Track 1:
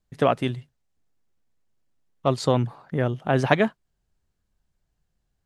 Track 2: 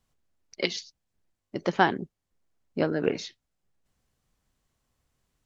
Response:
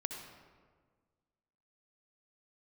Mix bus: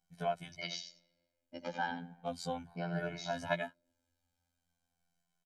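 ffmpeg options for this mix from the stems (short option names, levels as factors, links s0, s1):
-filter_complex "[0:a]highshelf=f=7200:g=7.5,volume=0.251[s0];[1:a]highpass=150,alimiter=limit=0.15:level=0:latency=1:release=77,volume=0.531,asplit=3[s1][s2][s3];[s2]volume=0.188[s4];[s3]volume=0.422[s5];[2:a]atrim=start_sample=2205[s6];[s4][s6]afir=irnorm=-1:irlink=0[s7];[s5]aecho=0:1:87:1[s8];[s0][s1][s7][s8]amix=inputs=4:normalize=0,aecho=1:1:1.3:0.96,afftfilt=real='hypot(re,im)*cos(PI*b)':imag='0':win_size=2048:overlap=0.75,asplit=2[s9][s10];[s10]adelay=2.2,afreqshift=-0.39[s11];[s9][s11]amix=inputs=2:normalize=1"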